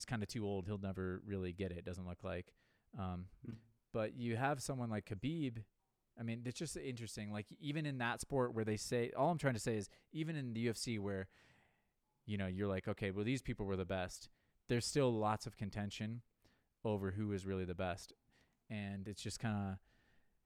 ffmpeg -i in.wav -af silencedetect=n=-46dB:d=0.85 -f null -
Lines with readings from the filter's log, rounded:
silence_start: 11.24
silence_end: 12.28 | silence_duration: 1.04